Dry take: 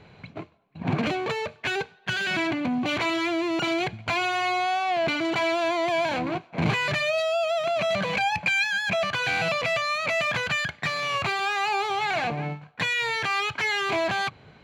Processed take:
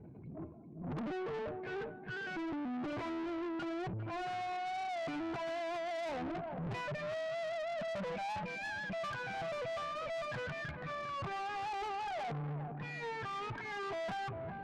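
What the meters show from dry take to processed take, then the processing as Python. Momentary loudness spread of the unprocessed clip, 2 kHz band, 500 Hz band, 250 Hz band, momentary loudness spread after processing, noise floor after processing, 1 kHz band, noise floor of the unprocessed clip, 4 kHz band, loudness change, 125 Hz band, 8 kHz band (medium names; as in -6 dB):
5 LU, -17.5 dB, -12.0 dB, -11.5 dB, 3 LU, -48 dBFS, -12.0 dB, -54 dBFS, -20.0 dB, -14.5 dB, -10.0 dB, -19.0 dB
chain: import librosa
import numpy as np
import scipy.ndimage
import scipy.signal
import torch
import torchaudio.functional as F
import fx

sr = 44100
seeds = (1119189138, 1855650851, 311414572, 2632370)

y = fx.spec_expand(x, sr, power=1.9)
y = fx.transient(y, sr, attack_db=-7, sustain_db=10)
y = fx.dmg_noise_band(y, sr, seeds[0], low_hz=140.0, high_hz=360.0, level_db=-52.0)
y = scipy.signal.sosfilt(scipy.signal.butter(2, 1000.0, 'lowpass', fs=sr, output='sos'), y)
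y = fx.echo_feedback(y, sr, ms=401, feedback_pct=29, wet_db=-12.5)
y = fx.tube_stage(y, sr, drive_db=35.0, bias=0.4)
y = y * librosa.db_to_amplitude(-2.5)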